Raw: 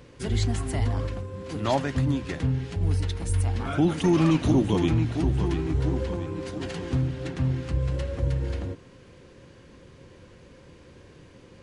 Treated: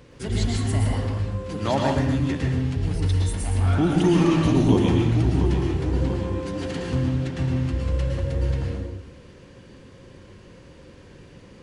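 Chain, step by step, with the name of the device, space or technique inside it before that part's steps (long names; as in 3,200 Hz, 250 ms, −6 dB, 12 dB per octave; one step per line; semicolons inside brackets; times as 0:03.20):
bathroom (convolution reverb RT60 0.70 s, pre-delay 106 ms, DRR 0 dB)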